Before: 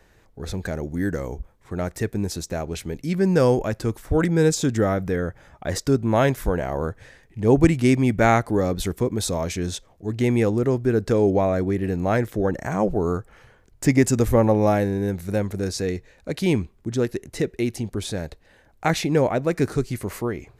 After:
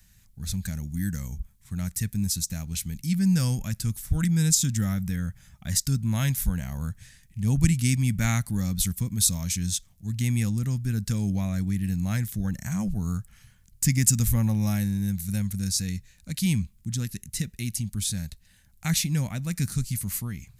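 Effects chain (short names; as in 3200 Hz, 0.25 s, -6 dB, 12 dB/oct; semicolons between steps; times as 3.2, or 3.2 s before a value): EQ curve 200 Hz 0 dB, 390 Hz -28 dB, 2500 Hz -4 dB, 11000 Hz +11 dB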